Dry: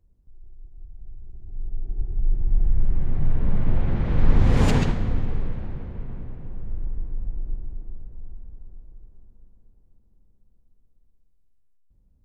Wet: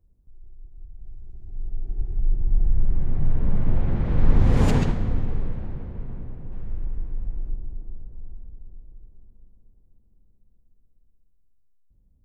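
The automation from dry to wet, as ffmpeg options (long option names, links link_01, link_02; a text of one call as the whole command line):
ffmpeg -i in.wav -af "asetnsamples=nb_out_samples=441:pad=0,asendcmd='1.04 equalizer g 3;2.25 equalizer g -4;6.52 equalizer g 4.5;7.49 equalizer g -6;8.49 equalizer g -14',equalizer=frequency=3300:width_type=o:width=2.8:gain=-6.5" out.wav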